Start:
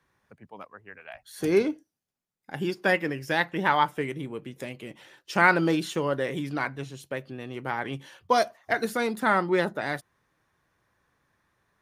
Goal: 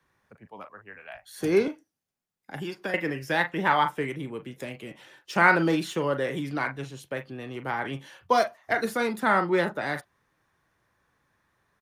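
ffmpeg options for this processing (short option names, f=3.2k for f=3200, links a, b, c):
-filter_complex "[0:a]asettb=1/sr,asplit=3[a][b][c];[a]atrim=end=1.674[d];[b]atrim=start=1.67:end=2.94,asetpts=PTS-STARTPTS,afade=t=in:d=0.004:c=qsin,afade=t=out:st=1.266:d=0.004:c=qsin,acrossover=split=610|1400|4200[e][f][g][h];[e]acompressor=threshold=-34dB:ratio=4[i];[f]acompressor=threshold=-43dB:ratio=4[j];[g]acompressor=threshold=-41dB:ratio=4[k];[h]acompressor=threshold=-52dB:ratio=4[l];[i][j][k][l]amix=inputs=4:normalize=0[m];[c]atrim=start=2.936[n];[d][m]acrossfade=d=0.004:c1=hsin:c2=qsin[o];[o][n]acrossfade=d=0.004:c1=qsin:c2=hsin,acrossover=split=210|530|2900[p][q][r][s];[r]asplit=2[t][u];[u]adelay=40,volume=-5.5dB[v];[t][v]amix=inputs=2:normalize=0[w];[s]asoftclip=type=tanh:threshold=-31dB[x];[p][q][w][x]amix=inputs=4:normalize=0"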